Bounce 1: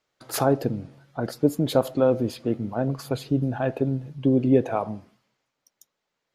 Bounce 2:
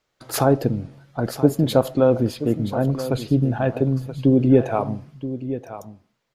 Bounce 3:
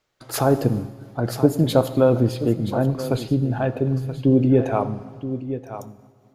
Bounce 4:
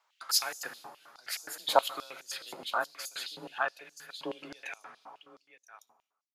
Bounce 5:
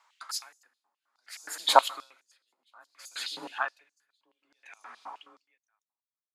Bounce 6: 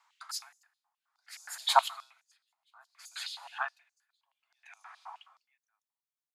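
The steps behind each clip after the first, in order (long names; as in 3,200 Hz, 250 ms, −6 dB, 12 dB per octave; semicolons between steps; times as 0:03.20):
low-shelf EQ 95 Hz +8.5 dB; single-tap delay 977 ms −12.5 dB; level +3 dB
on a send at −12 dB: convolution reverb RT60 1.7 s, pre-delay 4 ms; on the sum: amplitude modulation by smooth noise, depth 50%; level +2 dB
fade-out on the ending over 2.04 s; frequency shifter +25 Hz; high-pass on a step sequencer 9.5 Hz 940–6,500 Hz; level −3 dB
octave-band graphic EQ 125/250/1,000/2,000/4,000/8,000 Hz −11/+8/+10/+8/+5/+11 dB; tremolo with a sine in dB 0.59 Hz, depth 39 dB; level −2.5 dB
Butterworth high-pass 670 Hz 72 dB per octave; level −3.5 dB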